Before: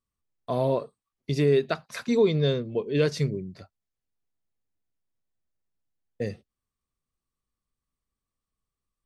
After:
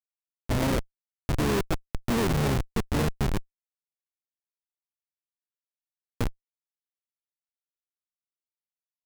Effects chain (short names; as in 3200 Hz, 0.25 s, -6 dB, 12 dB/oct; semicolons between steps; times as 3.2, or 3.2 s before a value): speakerphone echo 0.24 s, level -25 dB; harmoniser -12 st -6 dB, -4 st -9 dB; Schmitt trigger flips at -22.5 dBFS; gain +4.5 dB